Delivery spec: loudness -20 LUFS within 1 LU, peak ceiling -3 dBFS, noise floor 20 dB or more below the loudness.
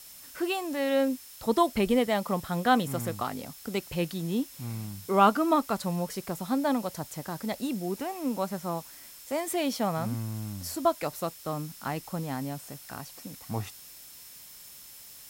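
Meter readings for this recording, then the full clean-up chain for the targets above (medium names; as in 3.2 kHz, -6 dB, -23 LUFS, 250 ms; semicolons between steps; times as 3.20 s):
steady tone 5.3 kHz; tone level -57 dBFS; noise floor -49 dBFS; noise floor target -50 dBFS; loudness -30.0 LUFS; peak level -9.0 dBFS; loudness target -20.0 LUFS
-> band-stop 5.3 kHz, Q 30; noise reduction 6 dB, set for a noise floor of -49 dBFS; trim +10 dB; peak limiter -3 dBFS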